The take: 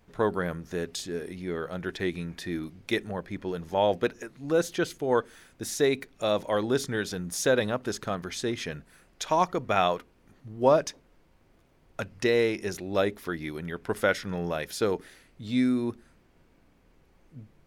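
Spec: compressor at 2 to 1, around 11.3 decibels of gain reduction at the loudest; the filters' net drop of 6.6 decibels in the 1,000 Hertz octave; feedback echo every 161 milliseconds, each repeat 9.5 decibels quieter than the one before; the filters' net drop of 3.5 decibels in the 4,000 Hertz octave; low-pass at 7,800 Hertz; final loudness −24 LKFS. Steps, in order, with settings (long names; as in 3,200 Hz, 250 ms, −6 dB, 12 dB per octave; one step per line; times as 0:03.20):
low-pass filter 7,800 Hz
parametric band 1,000 Hz −9 dB
parametric band 4,000 Hz −3.5 dB
downward compressor 2 to 1, threshold −41 dBFS
repeating echo 161 ms, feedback 33%, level −9.5 dB
level +15.5 dB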